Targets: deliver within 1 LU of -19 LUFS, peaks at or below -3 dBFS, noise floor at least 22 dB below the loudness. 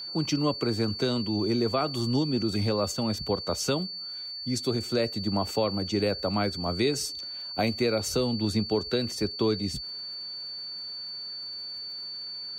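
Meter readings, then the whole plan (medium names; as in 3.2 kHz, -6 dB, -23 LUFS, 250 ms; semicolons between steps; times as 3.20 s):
tick rate 38 per s; steady tone 4.5 kHz; tone level -35 dBFS; loudness -28.5 LUFS; peak level -14.0 dBFS; loudness target -19.0 LUFS
-> de-click; band-stop 4.5 kHz, Q 30; trim +9.5 dB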